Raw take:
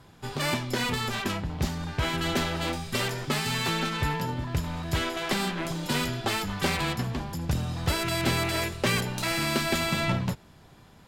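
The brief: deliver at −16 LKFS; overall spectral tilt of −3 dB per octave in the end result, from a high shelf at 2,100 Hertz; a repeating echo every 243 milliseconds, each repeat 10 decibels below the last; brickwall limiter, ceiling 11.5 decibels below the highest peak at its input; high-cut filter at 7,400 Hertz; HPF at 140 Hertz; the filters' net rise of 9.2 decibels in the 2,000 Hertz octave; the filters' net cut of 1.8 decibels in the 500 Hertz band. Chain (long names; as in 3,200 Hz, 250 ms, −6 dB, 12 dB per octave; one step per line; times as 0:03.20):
high-pass filter 140 Hz
low-pass filter 7,400 Hz
parametric band 500 Hz −3.5 dB
parametric band 2,000 Hz +8.5 dB
high-shelf EQ 2,100 Hz +5 dB
brickwall limiter −18.5 dBFS
repeating echo 243 ms, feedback 32%, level −10 dB
level +12 dB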